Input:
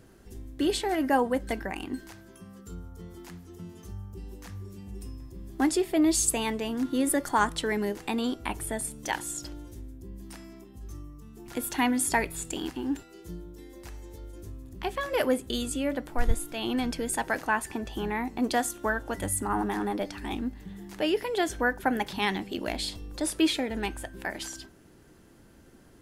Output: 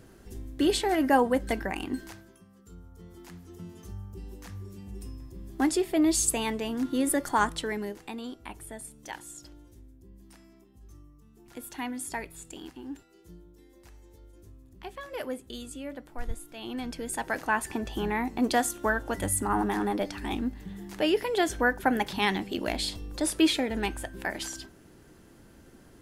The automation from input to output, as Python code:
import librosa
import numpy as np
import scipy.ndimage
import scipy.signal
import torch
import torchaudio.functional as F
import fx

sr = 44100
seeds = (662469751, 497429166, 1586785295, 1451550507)

y = fx.gain(x, sr, db=fx.line((2.12, 2.0), (2.48, -10.0), (3.49, -0.5), (7.45, -0.5), (8.2, -9.5), (16.45, -9.5), (17.71, 1.5)))